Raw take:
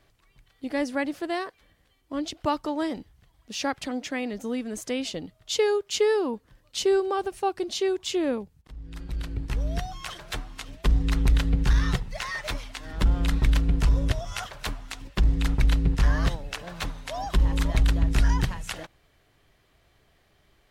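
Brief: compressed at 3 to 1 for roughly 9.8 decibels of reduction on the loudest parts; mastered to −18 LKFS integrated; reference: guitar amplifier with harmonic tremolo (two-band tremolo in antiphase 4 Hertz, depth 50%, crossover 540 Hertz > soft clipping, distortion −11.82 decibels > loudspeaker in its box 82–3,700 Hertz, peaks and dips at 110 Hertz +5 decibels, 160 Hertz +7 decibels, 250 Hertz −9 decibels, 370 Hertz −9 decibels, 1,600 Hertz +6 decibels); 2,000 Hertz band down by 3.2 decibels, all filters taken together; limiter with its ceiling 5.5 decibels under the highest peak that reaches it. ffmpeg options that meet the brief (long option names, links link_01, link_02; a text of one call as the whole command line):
ffmpeg -i in.wav -filter_complex "[0:a]equalizer=frequency=2000:width_type=o:gain=-8.5,acompressor=threshold=-29dB:ratio=3,alimiter=limit=-23.5dB:level=0:latency=1,acrossover=split=540[link_01][link_02];[link_01]aeval=exprs='val(0)*(1-0.5/2+0.5/2*cos(2*PI*4*n/s))':channel_layout=same[link_03];[link_02]aeval=exprs='val(0)*(1-0.5/2-0.5/2*cos(2*PI*4*n/s))':channel_layout=same[link_04];[link_03][link_04]amix=inputs=2:normalize=0,asoftclip=threshold=-33dB,highpass=82,equalizer=frequency=110:width_type=q:width=4:gain=5,equalizer=frequency=160:width_type=q:width=4:gain=7,equalizer=frequency=250:width_type=q:width=4:gain=-9,equalizer=frequency=370:width_type=q:width=4:gain=-9,equalizer=frequency=1600:width_type=q:width=4:gain=6,lowpass=frequency=3700:width=0.5412,lowpass=frequency=3700:width=1.3066,volume=26dB" out.wav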